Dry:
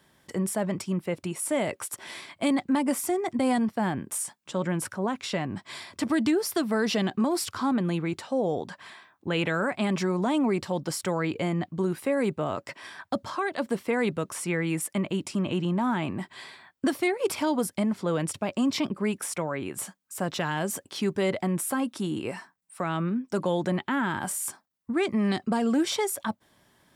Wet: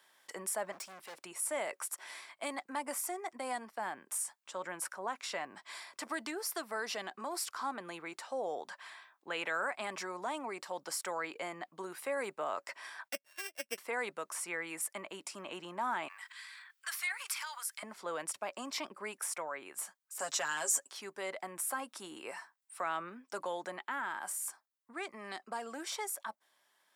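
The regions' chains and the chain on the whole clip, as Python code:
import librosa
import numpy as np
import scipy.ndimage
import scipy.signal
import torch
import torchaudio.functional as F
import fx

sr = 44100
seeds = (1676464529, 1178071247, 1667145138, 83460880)

y = fx.chain(x, sr, fx.leveller(passes=1),
    fx.overload_stage(gain_db=35.0), at=(0.72, 1.2))
y = fx.chain(y, sr, fx.sample_sort(block=16),
    fx.band_shelf(hz=1000.0, db=-11.0, octaves=1.0),
    fx.upward_expand(threshold_db=-40.0, expansion=2.5), at=(13.08, 13.78))
y = fx.chain(y, sr, fx.highpass(hz=1300.0, slope=24),
    fx.transient(attack_db=2, sustain_db=10), at=(16.08, 17.83))
y = fx.chain(y, sr, fx.peak_eq(hz=7100.0, db=14.0, octaves=0.84),
    fx.comb(ms=7.3, depth=0.65),
    fx.band_squash(depth_pct=40), at=(20.19, 20.92))
y = fx.dynamic_eq(y, sr, hz=3300.0, q=1.4, threshold_db=-51.0, ratio=4.0, max_db=-6)
y = scipy.signal.sosfilt(scipy.signal.butter(2, 760.0, 'highpass', fs=sr, output='sos'), y)
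y = fx.rider(y, sr, range_db=4, speed_s=2.0)
y = y * librosa.db_to_amplitude(-5.0)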